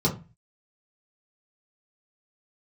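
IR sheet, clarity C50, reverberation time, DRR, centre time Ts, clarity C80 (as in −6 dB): 12.0 dB, 0.30 s, −4.5 dB, 15 ms, 18.5 dB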